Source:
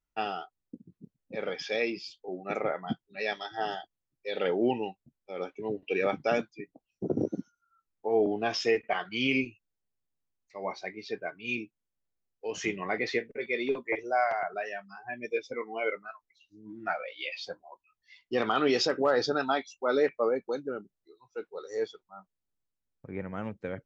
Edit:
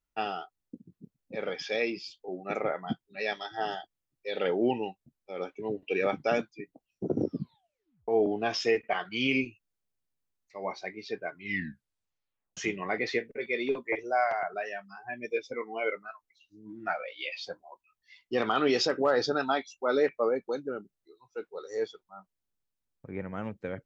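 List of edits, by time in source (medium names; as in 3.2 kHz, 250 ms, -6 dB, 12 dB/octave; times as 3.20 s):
7.21 s: tape stop 0.87 s
11.30 s: tape stop 1.27 s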